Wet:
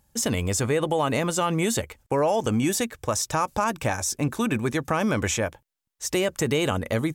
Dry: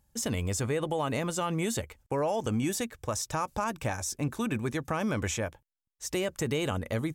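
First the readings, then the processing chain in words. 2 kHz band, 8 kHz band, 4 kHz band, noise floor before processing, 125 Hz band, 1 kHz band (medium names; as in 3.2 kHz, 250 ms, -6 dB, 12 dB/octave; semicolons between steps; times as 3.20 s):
+7.0 dB, +7.0 dB, +7.0 dB, -82 dBFS, +4.5 dB, +7.0 dB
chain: bass shelf 110 Hz -5.5 dB; trim +7 dB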